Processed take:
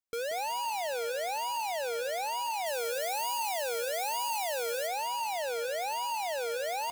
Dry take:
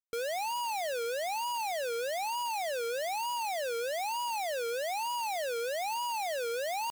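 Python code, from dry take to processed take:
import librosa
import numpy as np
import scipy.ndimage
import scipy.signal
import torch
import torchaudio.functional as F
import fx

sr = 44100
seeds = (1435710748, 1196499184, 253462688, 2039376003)

y = fx.high_shelf(x, sr, hz=6300.0, db=7.5, at=(2.66, 4.87))
y = fx.echo_feedback(y, sr, ms=183, feedback_pct=25, wet_db=-10.5)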